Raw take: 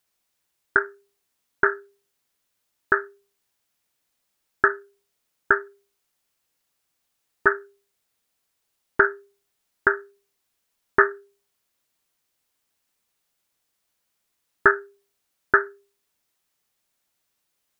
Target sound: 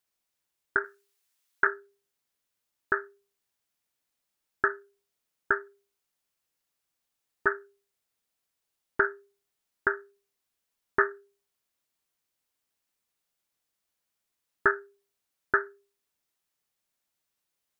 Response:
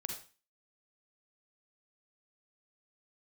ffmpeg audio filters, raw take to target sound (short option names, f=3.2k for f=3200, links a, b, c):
-filter_complex "[0:a]asettb=1/sr,asplit=3[a][b][c];[a]atrim=end=0.844[d];[b]atrim=start=0.84:end=1.67,asetpts=PTS-STARTPTS,afade=t=in:d=0.004:c=qsin,afade=t=out:st=0.826:d=0.004:c=qsin,tiltshelf=f=810:g=-7[e];[c]atrim=start=1.666[f];[d][e]acrossfade=d=0.004:c1=hsin:c2=qsin[g];[g][f]acrossfade=d=0.004:c1=qsin:c2=hsin,volume=-7dB"